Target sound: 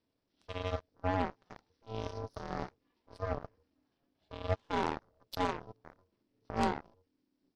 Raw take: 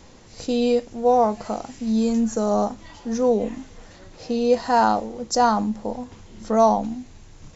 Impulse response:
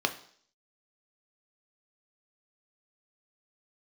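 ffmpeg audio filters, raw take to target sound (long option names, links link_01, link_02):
-af "aeval=exprs='val(0)*sin(2*PI*370*n/s)':channel_layout=same,aeval=exprs='0.473*(cos(1*acos(clip(val(0)/0.473,-1,1)))-cos(1*PI/2))+0.075*(cos(2*acos(clip(val(0)/0.473,-1,1)))-cos(2*PI/2))+0.15*(cos(3*acos(clip(val(0)/0.473,-1,1)))-cos(3*PI/2))+0.0944*(cos(5*acos(clip(val(0)/0.473,-1,1)))-cos(5*PI/2))+0.075*(cos(7*acos(clip(val(0)/0.473,-1,1)))-cos(7*PI/2))':channel_layout=same,asetrate=33038,aresample=44100,atempo=1.33484,volume=-7.5dB"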